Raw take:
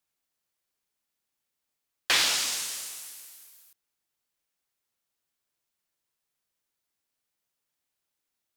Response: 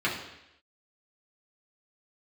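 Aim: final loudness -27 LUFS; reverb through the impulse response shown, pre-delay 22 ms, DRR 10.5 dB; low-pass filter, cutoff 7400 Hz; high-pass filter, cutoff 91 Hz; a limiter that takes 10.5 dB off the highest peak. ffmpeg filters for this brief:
-filter_complex "[0:a]highpass=91,lowpass=7.4k,alimiter=limit=-21.5dB:level=0:latency=1,asplit=2[a][b];[1:a]atrim=start_sample=2205,adelay=22[c];[b][c]afir=irnorm=-1:irlink=0,volume=-22dB[d];[a][d]amix=inputs=2:normalize=0,volume=4dB"

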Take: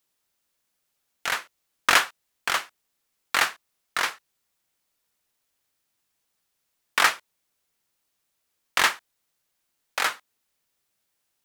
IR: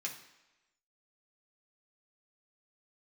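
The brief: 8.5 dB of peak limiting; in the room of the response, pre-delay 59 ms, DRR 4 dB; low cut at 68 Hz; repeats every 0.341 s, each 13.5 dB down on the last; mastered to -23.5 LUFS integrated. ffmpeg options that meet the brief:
-filter_complex "[0:a]highpass=68,alimiter=limit=-11.5dB:level=0:latency=1,aecho=1:1:341|682:0.211|0.0444,asplit=2[a][b];[1:a]atrim=start_sample=2205,adelay=59[c];[b][c]afir=irnorm=-1:irlink=0,volume=-4.5dB[d];[a][d]amix=inputs=2:normalize=0,volume=4.5dB"

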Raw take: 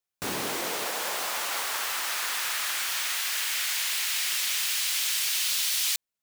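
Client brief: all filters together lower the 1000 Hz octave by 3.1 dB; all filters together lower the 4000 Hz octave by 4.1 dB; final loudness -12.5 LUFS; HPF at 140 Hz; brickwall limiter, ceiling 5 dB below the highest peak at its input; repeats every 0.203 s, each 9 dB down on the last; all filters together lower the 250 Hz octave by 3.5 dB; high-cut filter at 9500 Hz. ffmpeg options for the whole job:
-af "highpass=140,lowpass=9.5k,equalizer=f=250:t=o:g=-4,equalizer=f=1k:t=o:g=-3.5,equalizer=f=4k:t=o:g=-5,alimiter=limit=-24dB:level=0:latency=1,aecho=1:1:203|406|609|812:0.355|0.124|0.0435|0.0152,volume=18.5dB"

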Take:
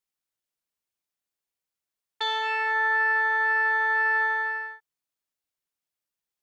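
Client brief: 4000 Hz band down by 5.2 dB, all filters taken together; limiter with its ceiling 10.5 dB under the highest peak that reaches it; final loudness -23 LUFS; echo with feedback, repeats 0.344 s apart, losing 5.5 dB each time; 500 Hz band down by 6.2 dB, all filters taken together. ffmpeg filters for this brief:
-af "equalizer=f=500:t=o:g=-7,equalizer=f=4k:t=o:g=-6,alimiter=level_in=4dB:limit=-24dB:level=0:latency=1,volume=-4dB,aecho=1:1:344|688|1032|1376|1720|2064|2408:0.531|0.281|0.149|0.079|0.0419|0.0222|0.0118,volume=12.5dB"

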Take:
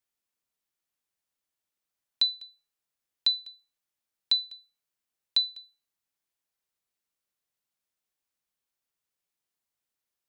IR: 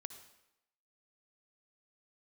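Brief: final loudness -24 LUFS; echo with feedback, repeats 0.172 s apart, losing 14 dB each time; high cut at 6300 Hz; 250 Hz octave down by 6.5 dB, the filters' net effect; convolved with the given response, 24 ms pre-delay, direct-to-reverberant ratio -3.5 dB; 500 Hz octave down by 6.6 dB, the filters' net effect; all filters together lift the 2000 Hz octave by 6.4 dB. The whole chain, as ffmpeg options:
-filter_complex "[0:a]lowpass=6.3k,equalizer=f=250:t=o:g=-6.5,equalizer=f=500:t=o:g=-7.5,equalizer=f=2k:t=o:g=8.5,aecho=1:1:172|344:0.2|0.0399,asplit=2[a][b];[1:a]atrim=start_sample=2205,adelay=24[c];[b][c]afir=irnorm=-1:irlink=0,volume=7.5dB[d];[a][d]amix=inputs=2:normalize=0,volume=-2dB"

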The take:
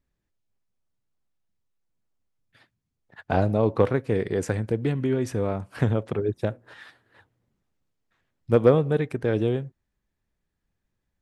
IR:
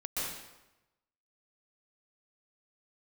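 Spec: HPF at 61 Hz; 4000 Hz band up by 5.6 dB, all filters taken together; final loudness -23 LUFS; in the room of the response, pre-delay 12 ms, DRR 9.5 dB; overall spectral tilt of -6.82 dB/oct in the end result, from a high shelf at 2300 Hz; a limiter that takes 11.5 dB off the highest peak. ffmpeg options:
-filter_complex "[0:a]highpass=61,highshelf=f=2.3k:g=3.5,equalizer=f=4k:t=o:g=4,alimiter=limit=-15dB:level=0:latency=1,asplit=2[a][b];[1:a]atrim=start_sample=2205,adelay=12[c];[b][c]afir=irnorm=-1:irlink=0,volume=-14dB[d];[a][d]amix=inputs=2:normalize=0,volume=4.5dB"

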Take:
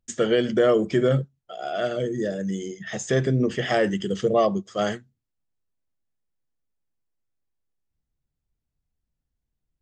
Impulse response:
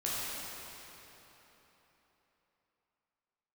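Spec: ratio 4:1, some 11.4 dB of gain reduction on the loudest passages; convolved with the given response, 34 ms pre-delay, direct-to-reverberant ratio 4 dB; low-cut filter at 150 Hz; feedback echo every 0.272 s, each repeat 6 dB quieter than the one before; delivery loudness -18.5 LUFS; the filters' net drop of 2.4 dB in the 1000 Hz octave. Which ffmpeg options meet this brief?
-filter_complex "[0:a]highpass=150,equalizer=f=1k:t=o:g=-4,acompressor=threshold=-30dB:ratio=4,aecho=1:1:272|544|816|1088|1360|1632:0.501|0.251|0.125|0.0626|0.0313|0.0157,asplit=2[a][b];[1:a]atrim=start_sample=2205,adelay=34[c];[b][c]afir=irnorm=-1:irlink=0,volume=-10.5dB[d];[a][d]amix=inputs=2:normalize=0,volume=13dB"

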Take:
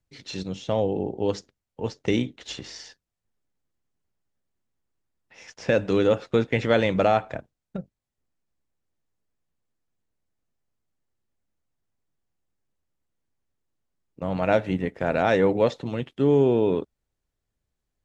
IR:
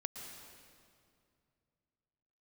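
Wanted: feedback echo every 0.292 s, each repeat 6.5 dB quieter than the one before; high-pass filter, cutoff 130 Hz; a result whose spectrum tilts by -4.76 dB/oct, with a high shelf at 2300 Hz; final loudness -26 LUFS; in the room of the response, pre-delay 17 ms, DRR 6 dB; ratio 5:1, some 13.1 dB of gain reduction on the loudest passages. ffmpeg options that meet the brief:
-filter_complex "[0:a]highpass=130,highshelf=f=2.3k:g=5,acompressor=threshold=-30dB:ratio=5,aecho=1:1:292|584|876|1168|1460|1752:0.473|0.222|0.105|0.0491|0.0231|0.0109,asplit=2[a][b];[1:a]atrim=start_sample=2205,adelay=17[c];[b][c]afir=irnorm=-1:irlink=0,volume=-5dB[d];[a][d]amix=inputs=2:normalize=0,volume=7.5dB"

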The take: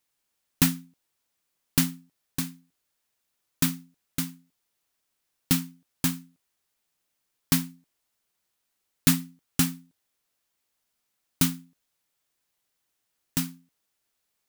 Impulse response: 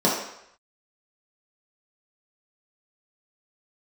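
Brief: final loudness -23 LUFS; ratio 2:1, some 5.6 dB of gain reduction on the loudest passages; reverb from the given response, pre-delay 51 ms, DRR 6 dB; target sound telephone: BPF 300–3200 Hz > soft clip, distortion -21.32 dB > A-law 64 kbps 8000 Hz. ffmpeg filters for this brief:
-filter_complex "[0:a]acompressor=threshold=-26dB:ratio=2,asplit=2[a][b];[1:a]atrim=start_sample=2205,adelay=51[c];[b][c]afir=irnorm=-1:irlink=0,volume=-23.5dB[d];[a][d]amix=inputs=2:normalize=0,highpass=300,lowpass=3.2k,asoftclip=threshold=-21.5dB,volume=17.5dB" -ar 8000 -c:a pcm_alaw

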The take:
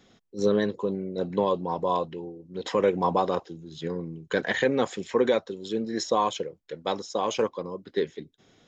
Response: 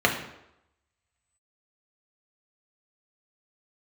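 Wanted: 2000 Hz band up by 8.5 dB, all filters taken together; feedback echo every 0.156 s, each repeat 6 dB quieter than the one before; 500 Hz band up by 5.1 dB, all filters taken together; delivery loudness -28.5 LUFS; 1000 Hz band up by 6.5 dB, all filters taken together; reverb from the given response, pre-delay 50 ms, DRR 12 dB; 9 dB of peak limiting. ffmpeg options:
-filter_complex "[0:a]equalizer=f=500:t=o:g=4.5,equalizer=f=1k:t=o:g=4.5,equalizer=f=2k:t=o:g=8.5,alimiter=limit=-13dB:level=0:latency=1,aecho=1:1:156|312|468|624|780|936:0.501|0.251|0.125|0.0626|0.0313|0.0157,asplit=2[a][b];[1:a]atrim=start_sample=2205,adelay=50[c];[b][c]afir=irnorm=-1:irlink=0,volume=-29dB[d];[a][d]amix=inputs=2:normalize=0,volume=-4dB"

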